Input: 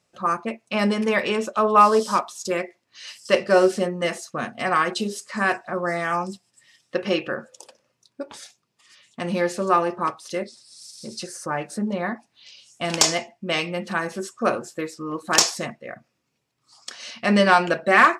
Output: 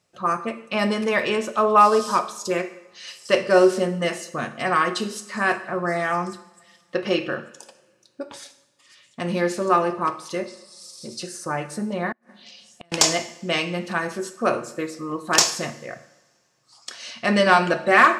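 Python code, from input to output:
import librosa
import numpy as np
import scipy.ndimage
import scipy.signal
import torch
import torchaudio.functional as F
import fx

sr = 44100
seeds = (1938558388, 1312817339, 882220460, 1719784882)

y = fx.rev_double_slope(x, sr, seeds[0], early_s=0.76, late_s=2.9, knee_db=-24, drr_db=9.5)
y = fx.gate_flip(y, sr, shuts_db=-27.0, range_db=-35, at=(12.12, 12.92))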